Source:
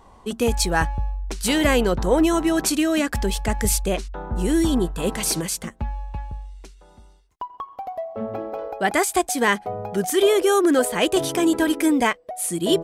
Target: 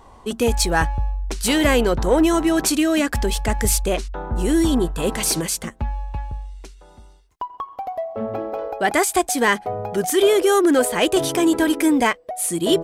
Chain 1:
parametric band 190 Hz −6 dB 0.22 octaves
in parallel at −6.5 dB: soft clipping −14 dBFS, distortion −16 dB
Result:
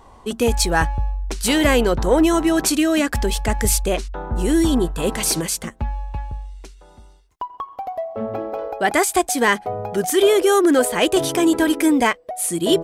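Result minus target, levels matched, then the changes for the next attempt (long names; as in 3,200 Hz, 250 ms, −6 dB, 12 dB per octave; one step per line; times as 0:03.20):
soft clipping: distortion −7 dB
change: soft clipping −20.5 dBFS, distortion −9 dB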